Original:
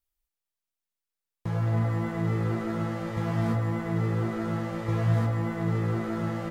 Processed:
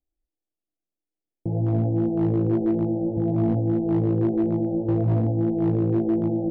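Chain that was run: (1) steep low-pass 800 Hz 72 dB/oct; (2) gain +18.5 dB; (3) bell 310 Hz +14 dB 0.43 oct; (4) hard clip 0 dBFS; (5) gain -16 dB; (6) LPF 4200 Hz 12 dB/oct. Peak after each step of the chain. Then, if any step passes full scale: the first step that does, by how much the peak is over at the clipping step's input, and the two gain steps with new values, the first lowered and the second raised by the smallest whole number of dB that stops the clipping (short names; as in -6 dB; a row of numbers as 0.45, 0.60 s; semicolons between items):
-15.5, +3.0, +5.5, 0.0, -16.0, -16.0 dBFS; step 2, 5.5 dB; step 2 +12.5 dB, step 5 -10 dB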